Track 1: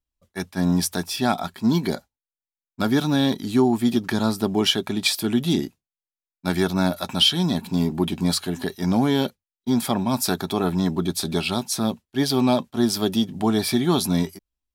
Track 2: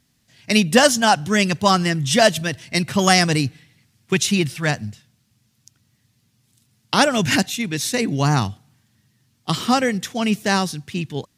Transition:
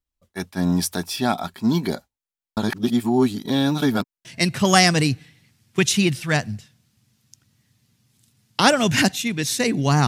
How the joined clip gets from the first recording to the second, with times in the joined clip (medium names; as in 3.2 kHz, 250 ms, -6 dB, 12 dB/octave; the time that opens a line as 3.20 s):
track 1
2.57–4.25 s: reverse
4.25 s: go over to track 2 from 2.59 s